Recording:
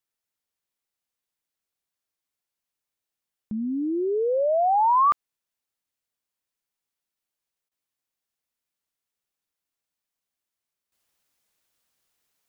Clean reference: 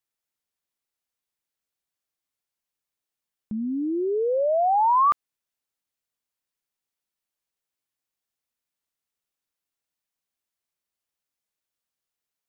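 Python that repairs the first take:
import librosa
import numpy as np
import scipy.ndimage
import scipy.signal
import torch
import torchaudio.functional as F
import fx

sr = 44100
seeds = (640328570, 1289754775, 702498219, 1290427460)

y = fx.fix_interpolate(x, sr, at_s=(7.69,), length_ms=23.0)
y = fx.fix_level(y, sr, at_s=10.92, step_db=-11.5)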